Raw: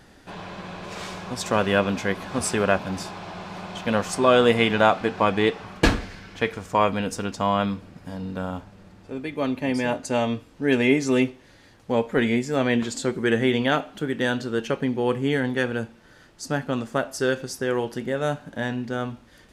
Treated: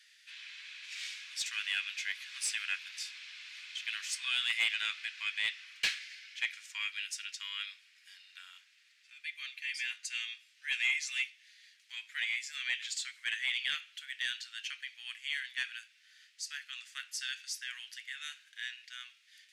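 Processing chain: steep high-pass 2 kHz 36 dB/octave; saturation -21 dBFS, distortion -14 dB; treble shelf 8.8 kHz -11.5 dB

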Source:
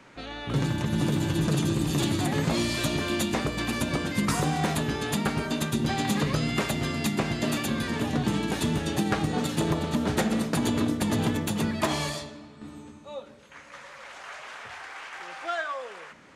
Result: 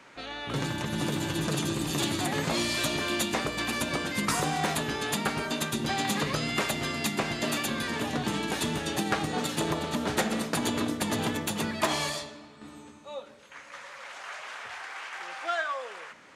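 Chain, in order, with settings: bass shelf 300 Hz -10.5 dB; trim +1.5 dB

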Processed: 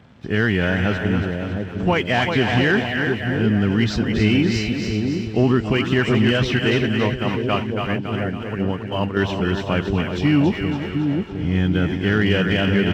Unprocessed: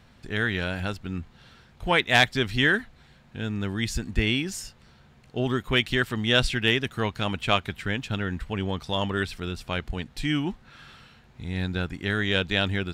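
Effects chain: knee-point frequency compression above 2.4 kHz 1.5:1; delay 374 ms -12 dB; 6.59–9.17 s: expander -20 dBFS; peak limiter -17 dBFS, peak gain reduction 10 dB; two-band feedback delay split 660 Hz, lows 710 ms, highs 279 ms, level -5.5 dB; waveshaping leveller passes 1; high-pass 100 Hz; tilt shelf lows +4 dB, about 790 Hz; trim +5.5 dB

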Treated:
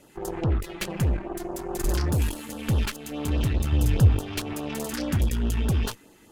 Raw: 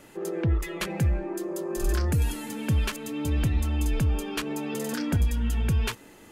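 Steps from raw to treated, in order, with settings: Chebyshev shaper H 6 -14 dB, 7 -28 dB, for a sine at -16 dBFS; LFO notch sine 4.8 Hz 500–2300 Hz; 3.72–4.53 s: peaking EQ 100 Hz +11.5 dB 0.83 oct

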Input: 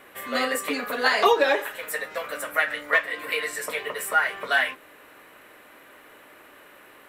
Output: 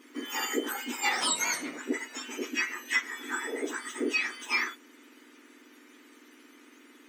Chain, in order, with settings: spectrum inverted on a logarithmic axis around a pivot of 1.9 kHz; 1.11–1.78 s: band noise 170–720 Hz -44 dBFS; trim -4 dB

